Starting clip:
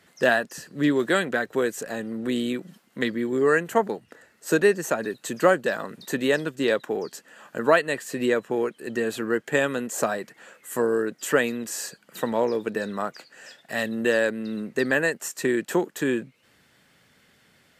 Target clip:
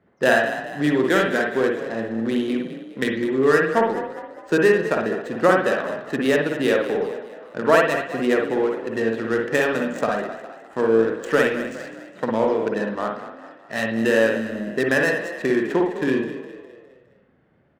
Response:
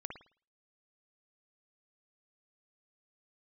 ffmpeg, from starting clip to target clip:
-filter_complex "[0:a]adynamicsmooth=sensitivity=4.5:basefreq=930,asplit=6[link_01][link_02][link_03][link_04][link_05][link_06];[link_02]adelay=205,afreqshift=32,volume=-12dB[link_07];[link_03]adelay=410,afreqshift=64,volume=-18.7dB[link_08];[link_04]adelay=615,afreqshift=96,volume=-25.5dB[link_09];[link_05]adelay=820,afreqshift=128,volume=-32.2dB[link_10];[link_06]adelay=1025,afreqshift=160,volume=-39dB[link_11];[link_01][link_07][link_08][link_09][link_10][link_11]amix=inputs=6:normalize=0[link_12];[1:a]atrim=start_sample=2205[link_13];[link_12][link_13]afir=irnorm=-1:irlink=0,volume=5.5dB"

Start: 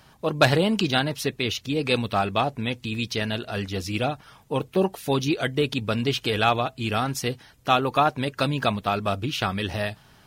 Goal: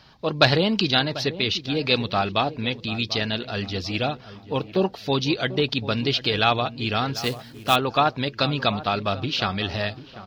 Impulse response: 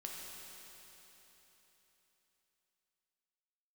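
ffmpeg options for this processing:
-filter_complex "[0:a]highshelf=frequency=6500:width_type=q:width=3:gain=-13,asplit=2[link_01][link_02];[link_02]adelay=742,lowpass=frequency=1100:poles=1,volume=-14dB,asplit=2[link_03][link_04];[link_04]adelay=742,lowpass=frequency=1100:poles=1,volume=0.43,asplit=2[link_05][link_06];[link_06]adelay=742,lowpass=frequency=1100:poles=1,volume=0.43,asplit=2[link_07][link_08];[link_08]adelay=742,lowpass=frequency=1100:poles=1,volume=0.43[link_09];[link_03][link_05][link_07][link_09]amix=inputs=4:normalize=0[link_10];[link_01][link_10]amix=inputs=2:normalize=0,asettb=1/sr,asplit=3[link_11][link_12][link_13];[link_11]atrim=end=7.164[link_14];[link_12]atrim=start=7.16:end=7.76,asetpts=PTS-STARTPTS,afade=type=in:duration=0.004:curve=qsin,afade=type=out:start_time=0.596:duration=0.004:curve=qsin,acrusher=bits=3:mode=log:mix=0:aa=0.000001[link_15];[link_13]atrim=start=7.756[link_16];[link_14][link_15]acrossfade=duration=0.004:curve1=hsin:curve2=qsin[link_17];[link_17][link_16]acrossfade=duration=0.004:curve1=qsin:curve2=hsin"

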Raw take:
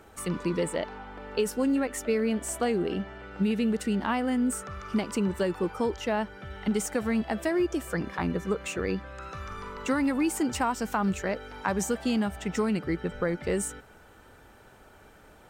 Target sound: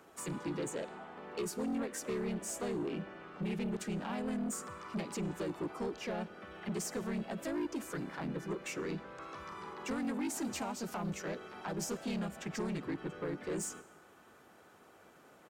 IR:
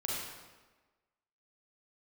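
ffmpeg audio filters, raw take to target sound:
-filter_complex "[0:a]highpass=180,asplit=2[link_01][link_02];[link_02]asetrate=37084,aresample=44100,atempo=1.18921,volume=0dB[link_03];[link_01][link_03]amix=inputs=2:normalize=0,acrossover=split=490|3000[link_04][link_05][link_06];[link_05]acompressor=threshold=-34dB:ratio=2[link_07];[link_04][link_07][link_06]amix=inputs=3:normalize=0,asoftclip=type=tanh:threshold=-23.5dB,asplit=2[link_08][link_09];[1:a]atrim=start_sample=2205,adelay=51[link_10];[link_09][link_10]afir=irnorm=-1:irlink=0,volume=-23dB[link_11];[link_08][link_11]amix=inputs=2:normalize=0,volume=-8dB"

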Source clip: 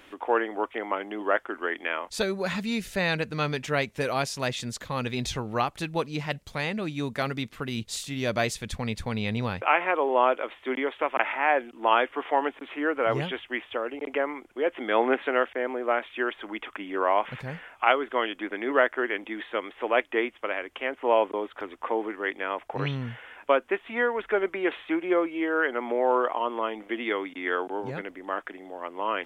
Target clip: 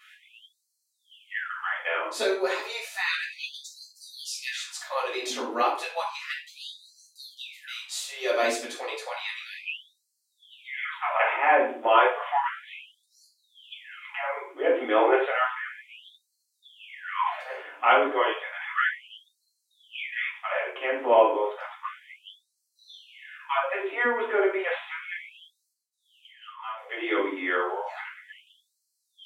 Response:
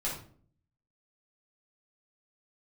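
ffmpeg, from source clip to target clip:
-filter_complex "[0:a]asplit=3[link_01][link_02][link_03];[link_01]afade=type=out:start_time=25.71:duration=0.02[link_04];[link_02]agate=range=-33dB:threshold=-21dB:ratio=3:detection=peak,afade=type=in:start_time=25.71:duration=0.02,afade=type=out:start_time=26.76:duration=0.02[link_05];[link_03]afade=type=in:start_time=26.76:duration=0.02[link_06];[link_04][link_05][link_06]amix=inputs=3:normalize=0[link_07];[1:a]atrim=start_sample=2205[link_08];[link_07][link_08]afir=irnorm=-1:irlink=0,afftfilt=real='re*gte(b*sr/1024,240*pow(4100/240,0.5+0.5*sin(2*PI*0.32*pts/sr)))':imag='im*gte(b*sr/1024,240*pow(4100/240,0.5+0.5*sin(2*PI*0.32*pts/sr)))':win_size=1024:overlap=0.75,volume=-2dB"

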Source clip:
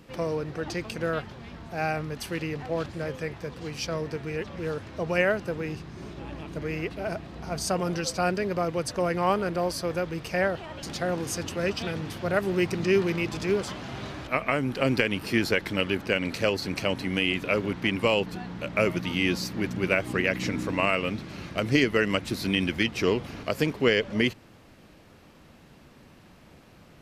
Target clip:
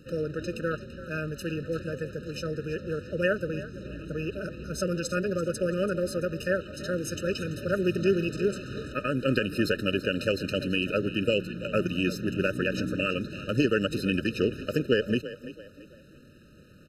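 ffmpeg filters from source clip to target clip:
ffmpeg -i in.wav -filter_complex "[0:a]atempo=1.6,asplit=4[link_01][link_02][link_03][link_04];[link_02]adelay=336,afreqshift=36,volume=-14.5dB[link_05];[link_03]adelay=672,afreqshift=72,volume=-23.4dB[link_06];[link_04]adelay=1008,afreqshift=108,volume=-32.2dB[link_07];[link_01][link_05][link_06][link_07]amix=inputs=4:normalize=0,afftfilt=real='re*eq(mod(floor(b*sr/1024/610),2),0)':imag='im*eq(mod(floor(b*sr/1024/610),2),0)':win_size=1024:overlap=0.75" out.wav

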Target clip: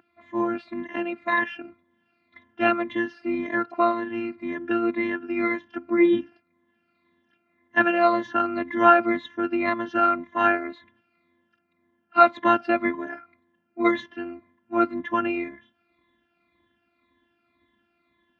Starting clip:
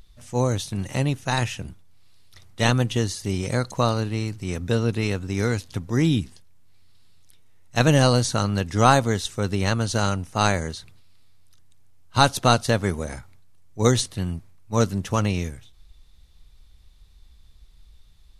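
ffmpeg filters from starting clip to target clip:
ffmpeg -i in.wav -af "afftfilt=real='re*pow(10,14/40*sin(2*PI*(1.1*log(max(b,1)*sr/1024/100)/log(2)-(-1.9)*(pts-256)/sr)))':imag='im*pow(10,14/40*sin(2*PI*(1.1*log(max(b,1)*sr/1024/100)/log(2)-(-1.9)*(pts-256)/sr)))':win_size=1024:overlap=0.75,afftfilt=real='hypot(re,im)*cos(PI*b)':imag='0':win_size=512:overlap=0.75,highpass=frequency=150:width=0.5412,highpass=frequency=150:width=1.3066,equalizer=frequency=150:width_type=q:width=4:gain=-10,equalizer=frequency=250:width_type=q:width=4:gain=3,equalizer=frequency=400:width_type=q:width=4:gain=-7,equalizer=frequency=740:width_type=q:width=4:gain=-4,equalizer=frequency=1900:width_type=q:width=4:gain=3,lowpass=frequency=2200:width=0.5412,lowpass=frequency=2200:width=1.3066,volume=5.5dB" out.wav

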